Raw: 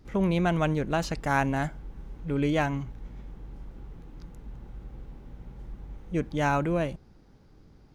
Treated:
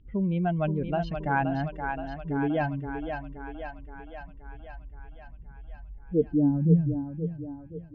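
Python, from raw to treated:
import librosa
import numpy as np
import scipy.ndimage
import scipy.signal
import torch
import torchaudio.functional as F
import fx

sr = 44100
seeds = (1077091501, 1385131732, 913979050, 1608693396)

y = fx.spec_expand(x, sr, power=2.0)
y = fx.filter_sweep_lowpass(y, sr, from_hz=3100.0, to_hz=120.0, start_s=5.34, end_s=6.88, q=5.8)
y = fx.echo_thinned(y, sr, ms=523, feedback_pct=67, hz=330.0, wet_db=-5.0)
y = F.gain(torch.from_numpy(y), -1.5).numpy()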